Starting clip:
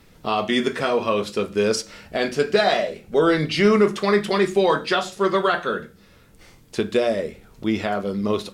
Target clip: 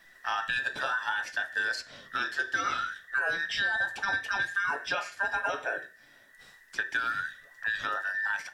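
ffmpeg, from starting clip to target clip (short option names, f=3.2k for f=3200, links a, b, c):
-filter_complex "[0:a]afftfilt=real='real(if(between(b,1,1012),(2*floor((b-1)/92)+1)*92-b,b),0)':imag='imag(if(between(b,1,1012),(2*floor((b-1)/92)+1)*92-b,b),0)*if(between(b,1,1012),-1,1)':win_size=2048:overlap=0.75,acrossover=split=390|6200[a][b][c];[a]acompressor=threshold=-46dB:ratio=4[d];[b]acompressor=threshold=-21dB:ratio=4[e];[c]acompressor=threshold=-52dB:ratio=4[f];[d][e][f]amix=inputs=3:normalize=0,volume=-6dB"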